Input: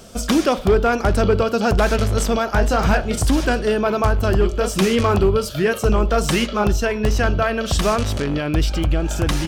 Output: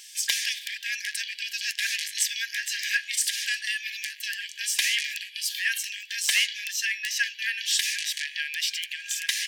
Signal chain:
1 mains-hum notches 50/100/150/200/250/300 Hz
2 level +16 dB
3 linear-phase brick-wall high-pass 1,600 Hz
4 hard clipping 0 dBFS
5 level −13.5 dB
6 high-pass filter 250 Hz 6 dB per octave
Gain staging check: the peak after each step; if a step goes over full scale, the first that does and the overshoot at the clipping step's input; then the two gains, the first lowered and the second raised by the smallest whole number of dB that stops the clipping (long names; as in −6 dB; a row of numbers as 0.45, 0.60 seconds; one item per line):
−6.5, +9.5, +7.0, 0.0, −13.5, −12.5 dBFS
step 2, 7.0 dB
step 2 +9 dB, step 5 −6.5 dB